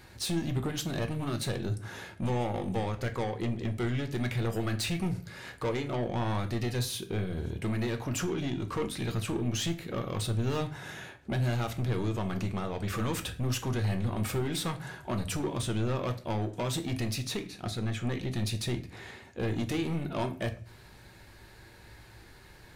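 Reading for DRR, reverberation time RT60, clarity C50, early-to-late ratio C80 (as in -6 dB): 6.0 dB, 0.45 s, 14.0 dB, 18.0 dB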